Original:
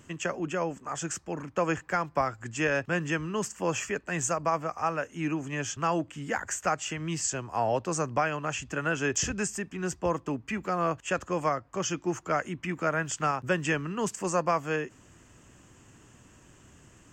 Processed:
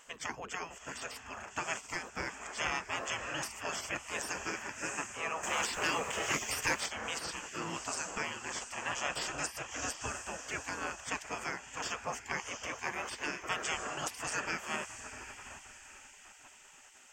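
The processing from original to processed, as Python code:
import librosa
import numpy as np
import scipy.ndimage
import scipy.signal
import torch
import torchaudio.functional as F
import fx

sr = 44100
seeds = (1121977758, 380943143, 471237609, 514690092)

y = fx.echo_diffused(x, sr, ms=702, feedback_pct=47, wet_db=-12)
y = fx.spec_gate(y, sr, threshold_db=-15, keep='weak')
y = fx.leveller(y, sr, passes=2, at=(5.43, 6.86))
y = y * 10.0 ** (2.5 / 20.0)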